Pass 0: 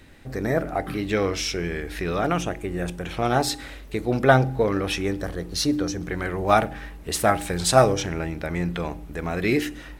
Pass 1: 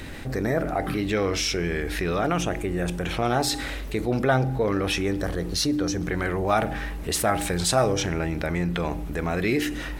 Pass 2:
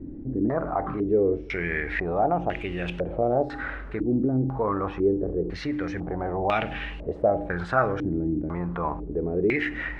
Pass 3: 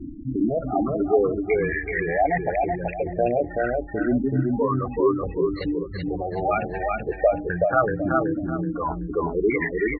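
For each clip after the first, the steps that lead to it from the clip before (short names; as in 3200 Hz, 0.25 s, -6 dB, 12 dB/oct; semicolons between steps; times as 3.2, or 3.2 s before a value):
fast leveller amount 50%; gain -6.5 dB
requantised 8-bit, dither none; stepped low-pass 2 Hz 300–2800 Hz; gain -4.5 dB
spectral gate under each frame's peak -10 dB strong; reverb removal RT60 1.9 s; feedback echo 0.378 s, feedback 29%, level -3 dB; gain +3.5 dB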